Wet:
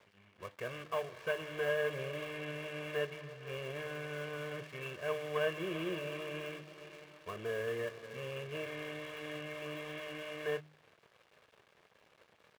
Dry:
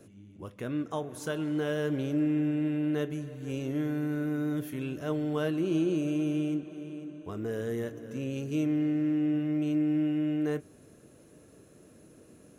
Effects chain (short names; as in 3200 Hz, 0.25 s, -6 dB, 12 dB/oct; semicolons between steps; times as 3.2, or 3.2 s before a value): CVSD 16 kbps; air absorption 260 m; comb 1.8 ms, depth 97%; crossover distortion -55 dBFS; tilt +3.5 dB/oct; de-hum 152.2 Hz, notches 2; gain -1.5 dB